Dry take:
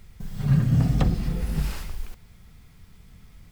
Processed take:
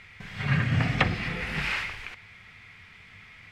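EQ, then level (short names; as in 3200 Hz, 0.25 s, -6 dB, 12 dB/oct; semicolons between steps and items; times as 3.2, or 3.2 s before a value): synth low-pass 2200 Hz, resonance Q 2.8; tilt +4.5 dB/oct; bell 100 Hz +11.5 dB 0.38 oct; +4.5 dB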